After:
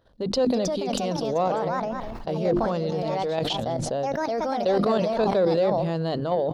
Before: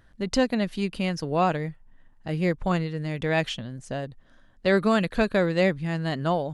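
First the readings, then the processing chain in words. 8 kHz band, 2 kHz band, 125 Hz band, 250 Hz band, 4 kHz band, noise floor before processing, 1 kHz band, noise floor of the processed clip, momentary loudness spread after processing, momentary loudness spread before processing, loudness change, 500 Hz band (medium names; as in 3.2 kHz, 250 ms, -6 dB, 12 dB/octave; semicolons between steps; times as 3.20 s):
+4.0 dB, -8.0 dB, -2.0 dB, -1.0 dB, +1.5 dB, -57 dBFS, +3.0 dB, -34 dBFS, 6 LU, 12 LU, +1.0 dB, +3.5 dB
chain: graphic EQ 500/1000/2000/4000/8000 Hz +11/+4/-10/+9/-8 dB; ever faster or slower copies 369 ms, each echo +3 st, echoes 2, each echo -6 dB; in parallel at -8.5 dB: saturation -13 dBFS, distortion -12 dB; on the sum: level held to a coarse grid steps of 13 dB; high-pass 41 Hz 6 dB/octave; hum notches 50/100/150/200/250/300/350 Hz; on a send: delay 202 ms -23 dB; on the sum: peak limiter -15 dBFS, peak gain reduction 10 dB; decay stretcher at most 23 dB/s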